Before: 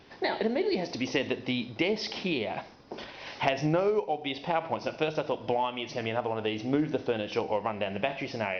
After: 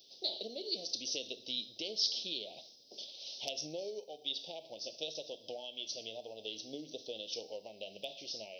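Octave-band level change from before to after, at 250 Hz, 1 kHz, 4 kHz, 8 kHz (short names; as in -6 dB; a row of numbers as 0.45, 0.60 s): -20.0 dB, -23.5 dB, +0.5 dB, n/a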